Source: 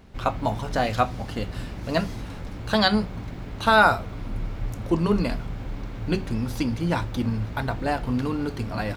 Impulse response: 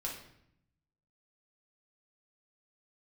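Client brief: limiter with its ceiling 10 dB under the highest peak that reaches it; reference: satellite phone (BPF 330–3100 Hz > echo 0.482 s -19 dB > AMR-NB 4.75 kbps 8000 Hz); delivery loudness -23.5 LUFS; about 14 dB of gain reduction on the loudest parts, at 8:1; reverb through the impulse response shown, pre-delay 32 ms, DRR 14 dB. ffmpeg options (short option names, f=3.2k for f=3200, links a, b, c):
-filter_complex "[0:a]acompressor=threshold=-27dB:ratio=8,alimiter=limit=-24dB:level=0:latency=1,asplit=2[a][b];[1:a]atrim=start_sample=2205,adelay=32[c];[b][c]afir=irnorm=-1:irlink=0,volume=-15dB[d];[a][d]amix=inputs=2:normalize=0,highpass=330,lowpass=3.1k,aecho=1:1:482:0.112,volume=18.5dB" -ar 8000 -c:a libopencore_amrnb -b:a 4750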